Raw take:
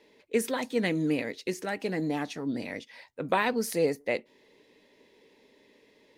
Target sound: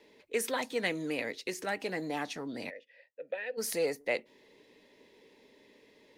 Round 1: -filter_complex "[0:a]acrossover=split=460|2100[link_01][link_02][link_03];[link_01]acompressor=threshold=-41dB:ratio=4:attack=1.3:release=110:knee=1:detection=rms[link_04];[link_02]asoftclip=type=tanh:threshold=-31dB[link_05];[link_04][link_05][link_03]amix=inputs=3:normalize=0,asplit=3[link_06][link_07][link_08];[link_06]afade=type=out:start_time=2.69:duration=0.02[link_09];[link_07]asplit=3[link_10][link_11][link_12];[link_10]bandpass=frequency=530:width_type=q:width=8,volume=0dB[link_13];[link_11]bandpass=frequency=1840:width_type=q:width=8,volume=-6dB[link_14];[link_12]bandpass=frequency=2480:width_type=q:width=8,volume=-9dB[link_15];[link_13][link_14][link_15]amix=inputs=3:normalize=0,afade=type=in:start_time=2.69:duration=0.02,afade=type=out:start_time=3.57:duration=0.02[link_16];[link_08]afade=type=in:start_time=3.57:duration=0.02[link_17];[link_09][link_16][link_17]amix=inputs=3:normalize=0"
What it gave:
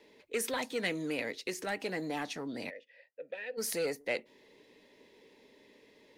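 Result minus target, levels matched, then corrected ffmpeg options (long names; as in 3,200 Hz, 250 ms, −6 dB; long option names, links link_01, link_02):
soft clipping: distortion +12 dB
-filter_complex "[0:a]acrossover=split=460|2100[link_01][link_02][link_03];[link_01]acompressor=threshold=-41dB:ratio=4:attack=1.3:release=110:knee=1:detection=rms[link_04];[link_02]asoftclip=type=tanh:threshold=-19.5dB[link_05];[link_04][link_05][link_03]amix=inputs=3:normalize=0,asplit=3[link_06][link_07][link_08];[link_06]afade=type=out:start_time=2.69:duration=0.02[link_09];[link_07]asplit=3[link_10][link_11][link_12];[link_10]bandpass=frequency=530:width_type=q:width=8,volume=0dB[link_13];[link_11]bandpass=frequency=1840:width_type=q:width=8,volume=-6dB[link_14];[link_12]bandpass=frequency=2480:width_type=q:width=8,volume=-9dB[link_15];[link_13][link_14][link_15]amix=inputs=3:normalize=0,afade=type=in:start_time=2.69:duration=0.02,afade=type=out:start_time=3.57:duration=0.02[link_16];[link_08]afade=type=in:start_time=3.57:duration=0.02[link_17];[link_09][link_16][link_17]amix=inputs=3:normalize=0"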